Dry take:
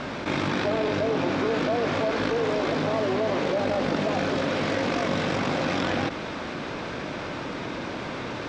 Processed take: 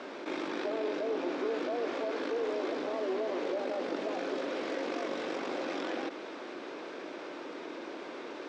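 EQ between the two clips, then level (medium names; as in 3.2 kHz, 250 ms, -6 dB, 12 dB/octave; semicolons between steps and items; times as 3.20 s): ladder high-pass 290 Hz, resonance 45%; -2.5 dB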